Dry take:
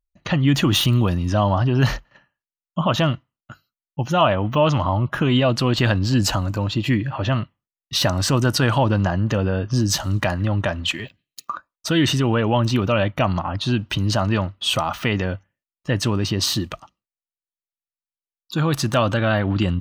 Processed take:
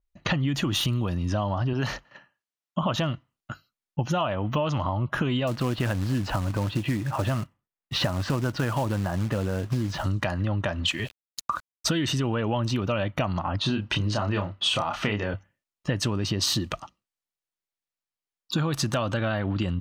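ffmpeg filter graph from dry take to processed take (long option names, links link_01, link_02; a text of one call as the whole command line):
ffmpeg -i in.wav -filter_complex "[0:a]asettb=1/sr,asplit=3[link_01][link_02][link_03];[link_01]atrim=end=1.734[link_04];[link_02]atrim=start=1.73:end=2.83,asetpts=PTS-STARTPTS,afade=type=in:duration=0.004:curve=qsin,afade=type=out:start_time=1.096:duration=0.004:curve=qsin,highpass=frequency=190:poles=1,highshelf=frequency=11000:gain=-5.5[link_05];[link_03]atrim=start=2.826[link_06];[link_04][link_05]acrossfade=duration=0.004:curve1=hsin:curve2=qsin[link_07];[link_07][link_06]acrossfade=duration=0.004:curve1=qsin:curve2=hsin,asettb=1/sr,asplit=3[link_08][link_09][link_10];[link_08]atrim=end=5.474[link_11];[link_09]atrim=start=5.47:end=10.04,asetpts=PTS-STARTPTS,afade=type=in:duration=0.004:curve=qsin,afade=type=out:start_time=4.566:duration=0.004:curve=qsin,lowpass=2400,acrusher=bits=4:mode=log:mix=0:aa=0.000001[link_12];[link_10]atrim=start=10.036[link_13];[link_11][link_12]acrossfade=duration=0.004:curve1=hsin:curve2=qsin[link_14];[link_14][link_13]acrossfade=duration=0.004:curve1=qsin:curve2=hsin,asettb=1/sr,asplit=3[link_15][link_16][link_17];[link_15]atrim=end=10.884[link_18];[link_16]atrim=start=10.88:end=11.88,asetpts=PTS-STARTPTS,afade=type=in:duration=0.004:curve=qsin,afade=type=out:start_time=0.996:duration=0.004:curve=qsin,aeval=exprs='val(0)*gte(abs(val(0)),0.00531)':channel_layout=same,asubboost=boost=12:cutoff=150[link_19];[link_17]atrim=start=11.876[link_20];[link_18][link_19]acrossfade=duration=0.004:curve1=hsin:curve2=qsin[link_21];[link_21][link_20]acrossfade=duration=0.004:curve1=qsin:curve2=hsin,asettb=1/sr,asplit=3[link_22][link_23][link_24];[link_22]atrim=end=13.604[link_25];[link_23]atrim=start=13.6:end=15.34,asetpts=PTS-STARTPTS,afade=type=in:duration=0.004:curve=qsin,afade=type=out:start_time=1.736:duration=0.004:curve=qsin,lowpass=9600,bass=frequency=250:gain=-3,treble=frequency=4000:gain=-5,asplit=2[link_26][link_27];[link_27]adelay=29,volume=-5dB[link_28];[link_26][link_28]amix=inputs=2:normalize=0,atrim=end_sample=76734[link_29];[link_24]atrim=start=15.336[link_30];[link_25][link_29]acrossfade=duration=0.004:curve1=hsin:curve2=qsin[link_31];[link_31][link_30]acrossfade=duration=0.004:curve1=qsin:curve2=hsin,highshelf=frequency=9600:gain=-10,acompressor=threshold=-26dB:ratio=12,adynamicequalizer=threshold=0.00501:dfrequency=5000:dqfactor=0.7:tfrequency=5000:tqfactor=0.7:attack=5:release=100:ratio=0.375:range=2.5:mode=boostabove:tftype=highshelf,volume=3.5dB" out.wav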